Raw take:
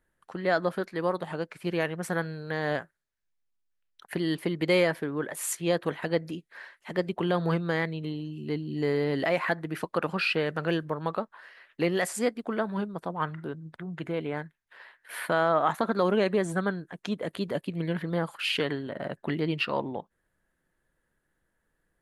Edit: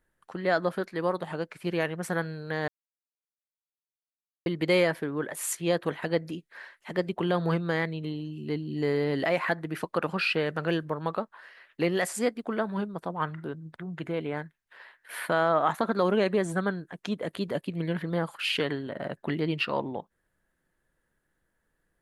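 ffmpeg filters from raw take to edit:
ffmpeg -i in.wav -filter_complex "[0:a]asplit=3[link_01][link_02][link_03];[link_01]atrim=end=2.68,asetpts=PTS-STARTPTS,afade=type=out:start_time=2.676:duration=0.004:curve=hsin[link_04];[link_02]atrim=start=2.68:end=4.46,asetpts=PTS-STARTPTS,volume=0[link_05];[link_03]atrim=start=4.46,asetpts=PTS-STARTPTS,afade=type=in:duration=0.004:curve=hsin[link_06];[link_04][link_05][link_06]concat=n=3:v=0:a=1" out.wav

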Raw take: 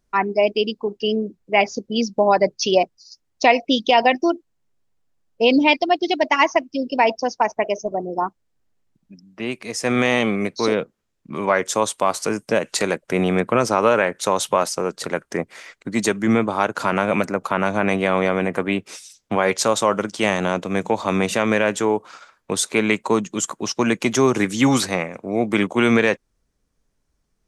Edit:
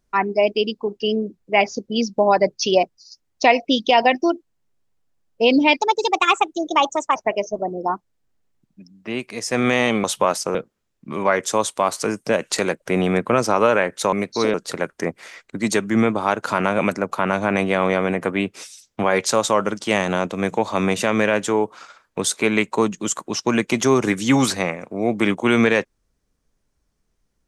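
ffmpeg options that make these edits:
ffmpeg -i in.wav -filter_complex "[0:a]asplit=7[link_01][link_02][link_03][link_04][link_05][link_06][link_07];[link_01]atrim=end=5.814[link_08];[link_02]atrim=start=5.81:end=7.48,asetpts=PTS-STARTPTS,asetrate=54684,aresample=44100[link_09];[link_03]atrim=start=7.476:end=10.362[link_10];[link_04]atrim=start=14.348:end=14.862[link_11];[link_05]atrim=start=10.768:end=14.352[link_12];[link_06]atrim=start=10.358:end=10.772[link_13];[link_07]atrim=start=14.858[link_14];[link_08][link_09]acrossfade=duration=0.004:curve1=hsin:curve2=hsin[link_15];[link_15][link_10]acrossfade=duration=0.004:curve1=hsin:curve2=hsin[link_16];[link_16][link_11]acrossfade=duration=0.004:curve1=hsin:curve2=hsin[link_17];[link_17][link_12]acrossfade=duration=0.004:curve1=hsin:curve2=hsin[link_18];[link_18][link_13]acrossfade=duration=0.004:curve1=hsin:curve2=hsin[link_19];[link_19][link_14]acrossfade=duration=0.004:curve1=hsin:curve2=hsin" out.wav

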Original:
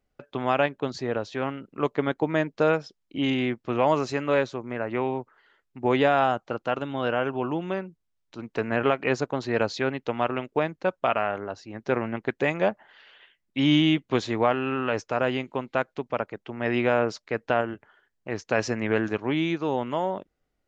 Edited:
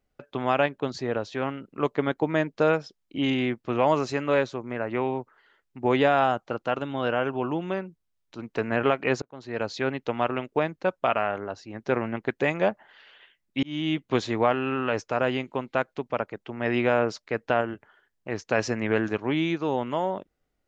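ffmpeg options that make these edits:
ffmpeg -i in.wav -filter_complex "[0:a]asplit=3[link_01][link_02][link_03];[link_01]atrim=end=9.22,asetpts=PTS-STARTPTS,afade=type=out:start_time=9.216:duration=0.004:curve=hsin[link_04];[link_02]atrim=start=9.22:end=13.63,asetpts=PTS-STARTPTS,afade=type=in:duration=0.69,afade=type=out:start_time=4.406:duration=0.004:curve=hsin[link_05];[link_03]atrim=start=13.63,asetpts=PTS-STARTPTS,afade=type=in:duration=0.48[link_06];[link_04][link_05][link_06]concat=n=3:v=0:a=1" out.wav

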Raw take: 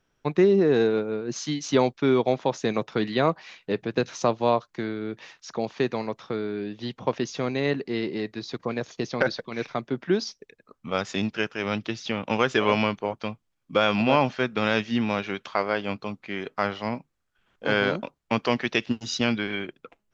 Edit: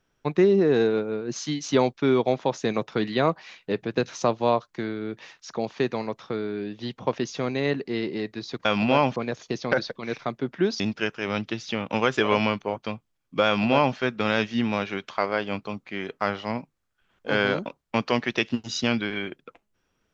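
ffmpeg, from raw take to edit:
ffmpeg -i in.wav -filter_complex "[0:a]asplit=4[link_01][link_02][link_03][link_04];[link_01]atrim=end=8.652[link_05];[link_02]atrim=start=13.828:end=14.342[link_06];[link_03]atrim=start=8.648:end=10.292[link_07];[link_04]atrim=start=11.168[link_08];[link_05][link_06]acrossfade=duration=0.004:curve1=hsin:curve2=hsin[link_09];[link_09][link_07]acrossfade=duration=0.004:curve1=hsin:curve2=hsin[link_10];[link_10][link_08]acrossfade=duration=0.004:curve1=hsin:curve2=hsin" out.wav

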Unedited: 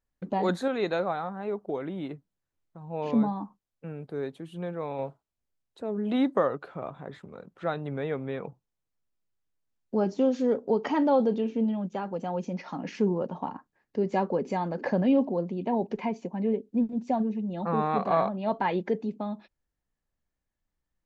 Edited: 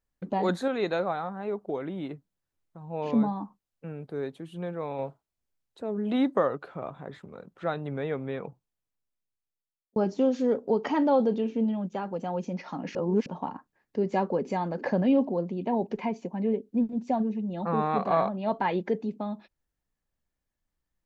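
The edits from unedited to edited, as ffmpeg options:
ffmpeg -i in.wav -filter_complex "[0:a]asplit=4[link_01][link_02][link_03][link_04];[link_01]atrim=end=9.96,asetpts=PTS-STARTPTS,afade=type=out:start_time=8.37:duration=1.59[link_05];[link_02]atrim=start=9.96:end=12.952,asetpts=PTS-STARTPTS,afade=type=in:duration=0.004:curve=hsin[link_06];[link_03]atrim=start=12.948:end=13.262,asetpts=PTS-STARTPTS,areverse[link_07];[link_04]atrim=start=13.258[link_08];[link_05][link_06]concat=n=2:v=0:a=1[link_09];[link_09][link_07]acrossfade=duration=0.004:curve1=hsin:curve2=hsin[link_10];[link_10][link_08]acrossfade=duration=0.004:curve1=hsin:curve2=hsin" out.wav

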